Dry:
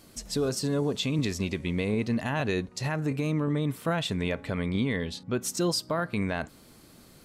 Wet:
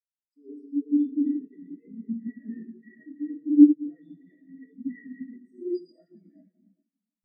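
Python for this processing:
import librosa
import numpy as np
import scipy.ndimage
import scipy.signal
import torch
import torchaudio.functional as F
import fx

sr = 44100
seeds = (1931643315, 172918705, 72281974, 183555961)

y = fx.highpass(x, sr, hz=110.0, slope=6)
y = fx.riaa(y, sr, side='recording')
y = fx.hum_notches(y, sr, base_hz=50, count=7)
y = fx.vibrato(y, sr, rate_hz=0.34, depth_cents=14.0)
y = fx.small_body(y, sr, hz=(230.0, 1900.0), ring_ms=20, db=18)
y = np.clip(y, -10.0 ** (-17.5 / 20.0), 10.0 ** (-17.5 / 20.0))
y = fx.rev_plate(y, sr, seeds[0], rt60_s=4.1, hf_ratio=1.0, predelay_ms=0, drr_db=-6.0)
y = fx.spectral_expand(y, sr, expansion=4.0)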